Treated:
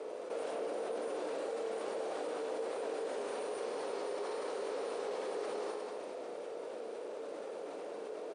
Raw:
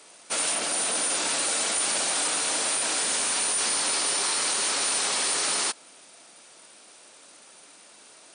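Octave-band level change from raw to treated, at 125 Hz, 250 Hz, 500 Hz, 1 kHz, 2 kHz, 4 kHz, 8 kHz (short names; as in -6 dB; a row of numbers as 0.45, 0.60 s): n/a, -5.5 dB, +2.0 dB, -10.0 dB, -18.5 dB, -25.5 dB, -32.5 dB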